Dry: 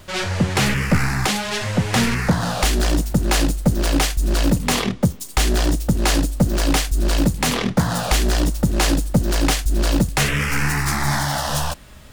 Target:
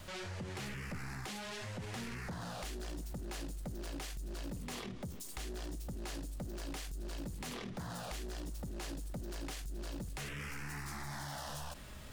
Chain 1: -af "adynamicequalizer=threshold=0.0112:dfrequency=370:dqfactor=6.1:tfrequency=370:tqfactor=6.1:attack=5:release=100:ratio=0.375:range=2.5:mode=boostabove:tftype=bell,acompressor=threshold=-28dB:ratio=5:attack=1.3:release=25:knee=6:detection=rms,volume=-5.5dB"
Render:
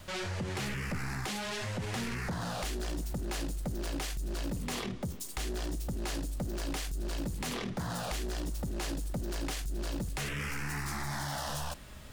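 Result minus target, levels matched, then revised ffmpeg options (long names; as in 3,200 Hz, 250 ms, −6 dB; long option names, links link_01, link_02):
downward compressor: peak gain reduction −7 dB
-af "adynamicequalizer=threshold=0.0112:dfrequency=370:dqfactor=6.1:tfrequency=370:tqfactor=6.1:attack=5:release=100:ratio=0.375:range=2.5:mode=boostabove:tftype=bell,acompressor=threshold=-37dB:ratio=5:attack=1.3:release=25:knee=6:detection=rms,volume=-5.5dB"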